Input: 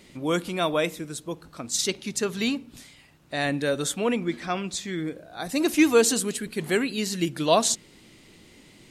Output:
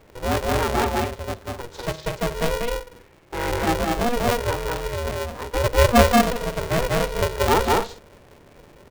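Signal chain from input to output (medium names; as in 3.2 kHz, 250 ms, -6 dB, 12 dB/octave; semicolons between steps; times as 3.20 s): local Wiener filter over 9 samples; tape spacing loss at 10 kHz 42 dB; de-hum 130.2 Hz, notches 3; on a send: loudspeakers at several distances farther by 67 m -1 dB, 84 m -10 dB; on the sum: polarity switched at an audio rate 240 Hz; trim +4 dB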